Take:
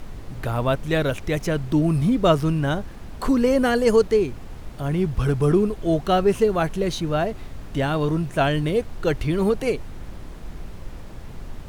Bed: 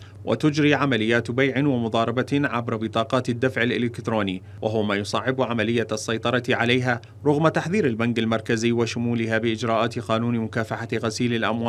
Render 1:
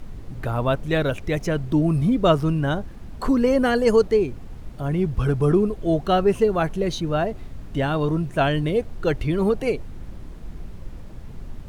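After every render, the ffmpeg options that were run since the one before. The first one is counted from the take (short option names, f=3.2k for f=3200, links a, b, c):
-af "afftdn=nr=6:nf=-38"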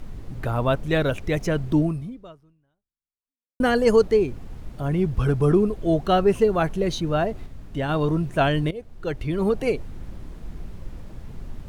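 -filter_complex "[0:a]asplit=5[a][b][c][d][e];[a]atrim=end=3.6,asetpts=PTS-STARTPTS,afade=t=out:st=1.81:d=1.79:c=exp[f];[b]atrim=start=3.6:end=7.462,asetpts=PTS-STARTPTS,afade=t=in:d=0.004:c=hsin[g];[c]atrim=start=7.458:end=7.892,asetpts=PTS-STARTPTS,volume=-3.5dB[h];[d]atrim=start=7.888:end=8.71,asetpts=PTS-STARTPTS,afade=t=out:st=0.818:d=0.004:c=hsin:silence=0.149624[i];[e]atrim=start=8.71,asetpts=PTS-STARTPTS,afade=t=in:d=0.93:silence=0.149624[j];[f][g]concat=n=2:v=0:a=1[k];[k][h]acrossfade=d=0.004:c1=hsin:c2=hsin[l];[i][j]concat=n=2:v=0:a=1[m];[l][m]acrossfade=d=0.004:c1=hsin:c2=hsin"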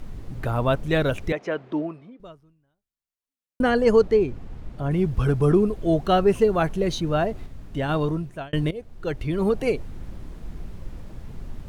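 -filter_complex "[0:a]asettb=1/sr,asplit=3[a][b][c];[a]atrim=end=1.324[d];[b]atrim=start=1.32:end=2.2,asetpts=PTS-STARTPTS,afade=t=in:d=0.004:c=qsin,afade=t=out:st=0.876:d=0.004:c=qsin,highpass=390,lowpass=2.6k[e];[c]atrim=start=2.196[f];[d][e]acrossfade=d=0.004:c1=hsin:c2=qsin[g];[g][f]acrossfade=d=0.004:c1=qsin:c2=hsin,asettb=1/sr,asplit=3[h][i][j];[h]atrim=end=3.614[k];[i]atrim=start=3.61:end=4.91,asetpts=PTS-STARTPTS,afade=t=in:d=0.004:c=qsin,afade=t=out:st=1.296:d=0.004:c=qsin,lowpass=f=3.6k:p=1[l];[j]atrim=start=4.906[m];[k][l]acrossfade=d=0.004:c1=hsin:c2=qsin[n];[n][m]acrossfade=d=0.004:c1=qsin:c2=hsin,asplit=2[o][p];[o]atrim=end=8.53,asetpts=PTS-STARTPTS,afade=t=out:st=7.95:d=0.58[q];[p]atrim=start=8.53,asetpts=PTS-STARTPTS,afade=t=in:d=0.004:c=hsin[r];[q][r]concat=n=2:v=0:a=1"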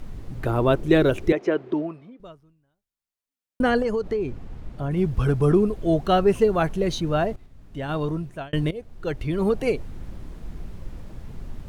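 -filter_complex "[0:a]asettb=1/sr,asplit=3[a][b][c];[a]atrim=end=0.464[d];[b]atrim=start=0.46:end=1.74,asetpts=PTS-STARTPTS,afade=t=in:d=0.004:c=qsin,afade=t=out:st=1.276:d=0.004:c=qsin,equalizer=f=360:t=o:w=0.5:g=13[e];[c]atrim=start=1.736[f];[d][e]acrossfade=d=0.004:c1=hsin:c2=qsin[g];[g][f]acrossfade=d=0.004:c1=qsin:c2=hsin,asettb=1/sr,asplit=3[h][i][j];[h]atrim=end=3.824[k];[i]atrim=start=3.82:end=4.97,asetpts=PTS-STARTPTS,afade=t=in:d=0.004:c=qsin,afade=t=out:st=1.146:d=0.004:c=qsin,acompressor=threshold=-21dB:ratio=6:attack=3.2:release=140:knee=1:detection=peak[l];[j]atrim=start=4.966[m];[k][l]acrossfade=d=0.004:c1=hsin:c2=qsin[n];[n][m]acrossfade=d=0.004:c1=qsin:c2=hsin,asplit=2[o][p];[o]atrim=end=7.36,asetpts=PTS-STARTPTS,afade=t=out:st=7.356:d=0.004:c=hsin:silence=0.199526[q];[p]atrim=start=7.36,asetpts=PTS-STARTPTS,afade=t=in:d=0.95:silence=0.199526[r];[q][r]concat=n=2:v=0:a=1"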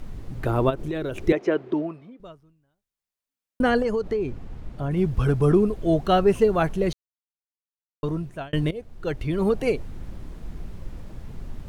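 -filter_complex "[0:a]asplit=3[a][b][c];[a]afade=t=out:st=0.69:d=0.02[d];[b]acompressor=threshold=-26dB:ratio=5:attack=3.2:release=140:knee=1:detection=peak,afade=t=in:st=0.69:d=0.02,afade=t=out:st=1.21:d=0.02[e];[c]afade=t=in:st=1.21:d=0.02[f];[d][e][f]amix=inputs=3:normalize=0,asplit=3[g][h][i];[g]atrim=end=6.93,asetpts=PTS-STARTPTS,afade=t=out:st=6.926:d=0.004:c=hsin[j];[h]atrim=start=6.93:end=8.03,asetpts=PTS-STARTPTS,volume=0[k];[i]atrim=start=8.03,asetpts=PTS-STARTPTS,afade=t=in:d=0.004:c=hsin[l];[j][k][l]concat=n=3:v=0:a=1"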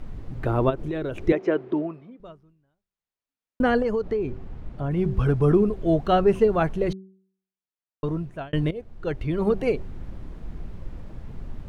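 -af "highshelf=f=4.8k:g=-12,bandreject=f=190.3:t=h:w=4,bandreject=f=380.6:t=h:w=4"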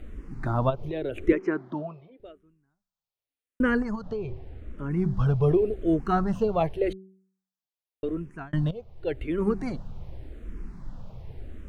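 -filter_complex "[0:a]asplit=2[a][b];[b]afreqshift=-0.87[c];[a][c]amix=inputs=2:normalize=1"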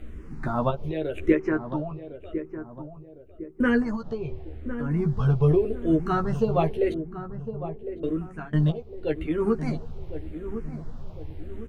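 -filter_complex "[0:a]asplit=2[a][b];[b]adelay=13,volume=-4dB[c];[a][c]amix=inputs=2:normalize=0,asplit=2[d][e];[e]adelay=1056,lowpass=f=920:p=1,volume=-10dB,asplit=2[f][g];[g]adelay=1056,lowpass=f=920:p=1,volume=0.46,asplit=2[h][i];[i]adelay=1056,lowpass=f=920:p=1,volume=0.46,asplit=2[j][k];[k]adelay=1056,lowpass=f=920:p=1,volume=0.46,asplit=2[l][m];[m]adelay=1056,lowpass=f=920:p=1,volume=0.46[n];[f][h][j][l][n]amix=inputs=5:normalize=0[o];[d][o]amix=inputs=2:normalize=0"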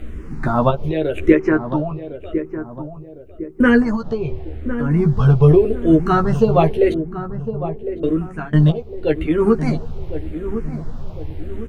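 -af "volume=9dB,alimiter=limit=-1dB:level=0:latency=1"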